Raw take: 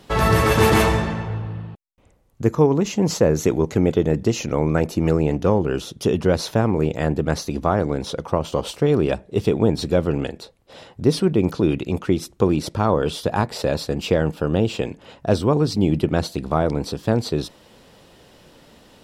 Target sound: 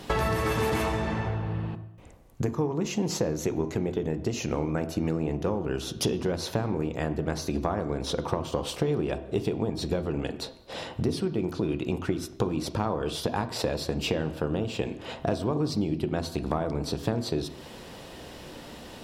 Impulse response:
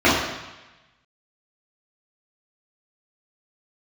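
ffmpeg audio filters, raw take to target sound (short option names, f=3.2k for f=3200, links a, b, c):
-filter_complex "[0:a]acompressor=threshold=-30dB:ratio=10,asplit=2[a][b];[1:a]atrim=start_sample=2205,afade=t=out:st=0.33:d=0.01,atrim=end_sample=14994[c];[b][c]afir=irnorm=-1:irlink=0,volume=-33.5dB[d];[a][d]amix=inputs=2:normalize=0,volume=5.5dB"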